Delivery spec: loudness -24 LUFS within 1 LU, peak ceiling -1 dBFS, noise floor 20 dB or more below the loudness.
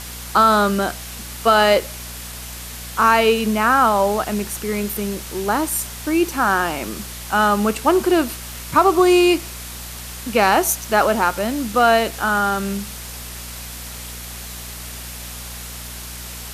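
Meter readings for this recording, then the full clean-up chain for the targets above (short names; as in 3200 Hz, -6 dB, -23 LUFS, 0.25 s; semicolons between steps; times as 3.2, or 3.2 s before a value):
hum 60 Hz; harmonics up to 240 Hz; hum level -34 dBFS; noise floor -33 dBFS; noise floor target -38 dBFS; loudness -18.0 LUFS; peak -2.5 dBFS; loudness target -24.0 LUFS
-> de-hum 60 Hz, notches 4; denoiser 6 dB, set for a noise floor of -33 dBFS; gain -6 dB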